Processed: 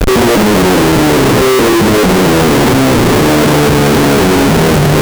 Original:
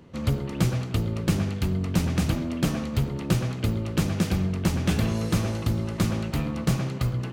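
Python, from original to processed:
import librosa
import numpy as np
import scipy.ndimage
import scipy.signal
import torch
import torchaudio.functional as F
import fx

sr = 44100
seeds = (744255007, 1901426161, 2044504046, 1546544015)

p1 = fx.speed_glide(x, sr, from_pct=174, to_pct=118)
p2 = fx.over_compress(p1, sr, threshold_db=-28.0, ratio=-0.5)
p3 = p1 + (p2 * 10.0 ** (1.0 / 20.0))
p4 = 10.0 ** (-14.5 / 20.0) * np.tanh(p3 / 10.0 ** (-14.5 / 20.0))
p5 = fx.peak_eq(p4, sr, hz=420.0, db=14.5, octaves=1.2)
p6 = fx.schmitt(p5, sr, flips_db=-27.0)
y = p6 * 10.0 ** (7.5 / 20.0)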